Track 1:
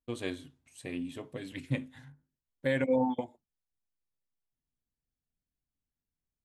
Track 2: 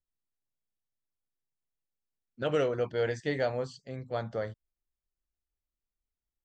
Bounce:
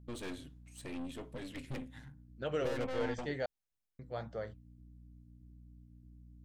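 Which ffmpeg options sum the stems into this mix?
-filter_complex "[0:a]aeval=exprs='(tanh(100*val(0)+0.6)-tanh(0.6))/100':c=same,volume=1.19[s0];[1:a]aeval=exprs='val(0)+0.00447*(sin(2*PI*60*n/s)+sin(2*PI*2*60*n/s)/2+sin(2*PI*3*60*n/s)/3+sin(2*PI*4*60*n/s)/4+sin(2*PI*5*60*n/s)/5)':c=same,flanger=delay=1.6:depth=7.7:regen=-77:speed=1.6:shape=sinusoidal,volume=0.708,asplit=3[s1][s2][s3];[s1]atrim=end=3.46,asetpts=PTS-STARTPTS,afade=t=out:st=3.456:d=0.004:c=hsin[s4];[s2]atrim=start=3.46:end=3.99,asetpts=PTS-STARTPTS,volume=0[s5];[s3]atrim=start=3.99,asetpts=PTS-STARTPTS,afade=t=in:d=0.004:c=hsin[s6];[s4][s5][s6]concat=n=3:v=0:a=1[s7];[s0][s7]amix=inputs=2:normalize=0"

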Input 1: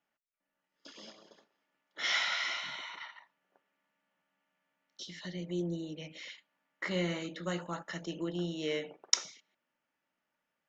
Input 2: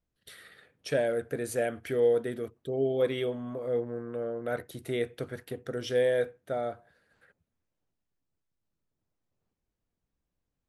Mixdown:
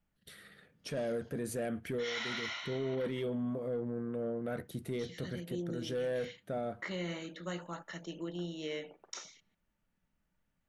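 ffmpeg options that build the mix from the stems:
-filter_complex "[0:a]bandreject=f=5100:w=12,volume=0.631,asplit=2[s0][s1];[1:a]lowshelf=f=61:g=9.5,aeval=exprs='0.178*(cos(1*acos(clip(val(0)/0.178,-1,1)))-cos(1*PI/2))+0.02*(cos(5*acos(clip(val(0)/0.178,-1,1)))-cos(5*PI/2))':c=same,equalizer=f=190:w=1.7:g=12,volume=0.398[s2];[s1]apad=whole_len=471281[s3];[s2][s3]sidechaincompress=threshold=0.00891:ratio=8:attack=47:release=256[s4];[s0][s4]amix=inputs=2:normalize=0,alimiter=level_in=1.68:limit=0.0631:level=0:latency=1:release=28,volume=0.596"

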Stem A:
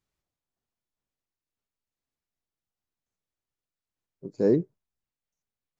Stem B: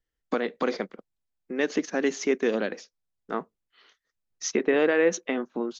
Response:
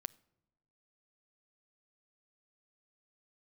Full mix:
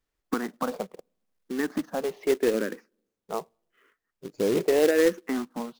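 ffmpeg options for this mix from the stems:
-filter_complex "[0:a]bass=f=250:g=-6,treble=f=4000:g=-3,acompressor=threshold=0.0708:ratio=6,volume=1.12,asplit=2[s0][s1];[s1]volume=0.15[s2];[1:a]lowpass=1500,asplit=2[s3][s4];[s4]afreqshift=-0.81[s5];[s3][s5]amix=inputs=2:normalize=1,volume=1.06,asplit=2[s6][s7];[s7]volume=0.316[s8];[2:a]atrim=start_sample=2205[s9];[s2][s8]amix=inputs=2:normalize=0[s10];[s10][s9]afir=irnorm=-1:irlink=0[s11];[s0][s6][s11]amix=inputs=3:normalize=0,acrusher=bits=3:mode=log:mix=0:aa=0.000001"

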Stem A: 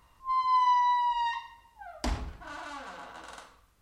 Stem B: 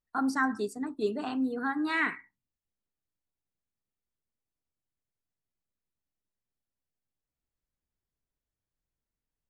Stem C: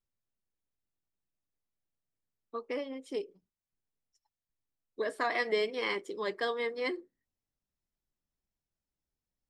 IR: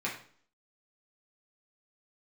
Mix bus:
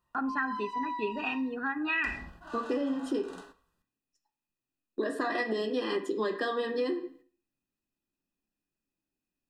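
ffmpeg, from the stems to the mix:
-filter_complex "[0:a]lowshelf=f=230:g=5.5,volume=0.398,afade=t=in:st=1.94:d=0.64:silence=0.446684,asplit=2[s0][s1];[s1]volume=0.668[s2];[1:a]lowpass=f=2500:t=q:w=15,volume=0.708,asplit=2[s3][s4];[s4]volume=0.0841[s5];[2:a]equalizer=f=290:w=2.3:g=12,alimiter=level_in=1.12:limit=0.0631:level=0:latency=1:release=161,volume=0.891,volume=1.41,asplit=2[s6][s7];[s7]volume=0.631[s8];[3:a]atrim=start_sample=2205[s9];[s2][s5][s8]amix=inputs=3:normalize=0[s10];[s10][s9]afir=irnorm=-1:irlink=0[s11];[s0][s3][s6][s11]amix=inputs=4:normalize=0,agate=range=0.398:threshold=0.00251:ratio=16:detection=peak,asuperstop=centerf=2200:order=20:qfactor=5.5,acompressor=threshold=0.0447:ratio=6"

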